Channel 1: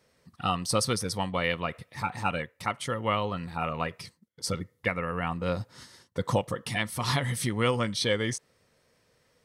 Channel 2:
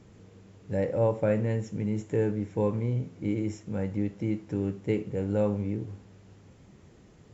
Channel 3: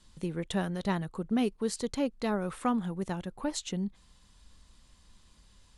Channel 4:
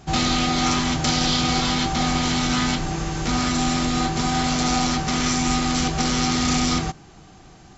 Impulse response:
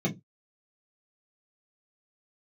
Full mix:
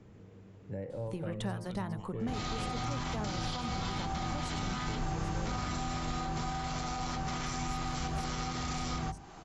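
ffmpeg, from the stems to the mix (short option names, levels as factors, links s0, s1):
-filter_complex "[0:a]adelay=800,volume=0.211[s0];[1:a]highshelf=f=4000:g=-11,volume=0.891[s1];[2:a]adelay=900,volume=0.944[s2];[3:a]bandreject=f=50:t=h:w=6,bandreject=f=100:t=h:w=6,bandreject=f=150:t=h:w=6,bandreject=f=200:t=h:w=6,bandreject=f=250:t=h:w=6,adelay=2200,volume=0.531[s3];[s0][s1]amix=inputs=2:normalize=0,acompressor=threshold=0.00447:ratio=1.5,volume=1[s4];[s2][s3]amix=inputs=2:normalize=0,equalizer=f=940:t=o:w=1.9:g=7.5,alimiter=limit=0.119:level=0:latency=1:release=57,volume=1[s5];[s4][s5]amix=inputs=2:normalize=0,bandreject=f=87.35:t=h:w=4,bandreject=f=174.7:t=h:w=4,bandreject=f=262.05:t=h:w=4,bandreject=f=349.4:t=h:w=4,bandreject=f=436.75:t=h:w=4,bandreject=f=524.1:t=h:w=4,bandreject=f=611.45:t=h:w=4,bandreject=f=698.8:t=h:w=4,bandreject=f=786.15:t=h:w=4,bandreject=f=873.5:t=h:w=4,bandreject=f=960.85:t=h:w=4,bandreject=f=1048.2:t=h:w=4,bandreject=f=1135.55:t=h:w=4,bandreject=f=1222.9:t=h:w=4,acrossover=split=150[s6][s7];[s7]acompressor=threshold=0.0112:ratio=3[s8];[s6][s8]amix=inputs=2:normalize=0"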